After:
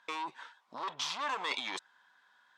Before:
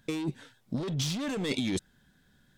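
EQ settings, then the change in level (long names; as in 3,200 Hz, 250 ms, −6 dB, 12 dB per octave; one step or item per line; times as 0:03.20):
high-pass with resonance 1,000 Hz, resonance Q 4.9
high-frequency loss of the air 110 metres
parametric band 13,000 Hz +11 dB 0.35 octaves
+1.0 dB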